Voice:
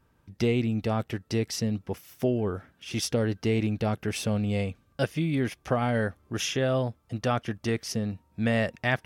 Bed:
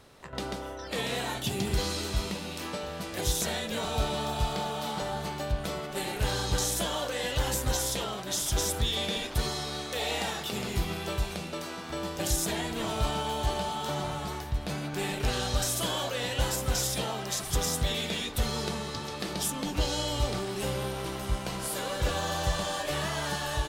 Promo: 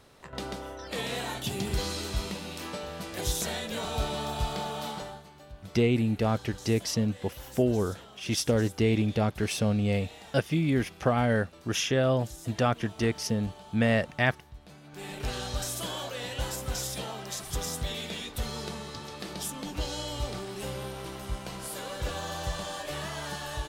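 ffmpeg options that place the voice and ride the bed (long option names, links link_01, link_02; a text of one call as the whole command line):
ffmpeg -i stem1.wav -i stem2.wav -filter_complex "[0:a]adelay=5350,volume=1dB[link_01];[1:a]volume=11dB,afade=type=out:start_time=4.85:duration=0.39:silence=0.16788,afade=type=in:start_time=14.84:duration=0.41:silence=0.237137[link_02];[link_01][link_02]amix=inputs=2:normalize=0" out.wav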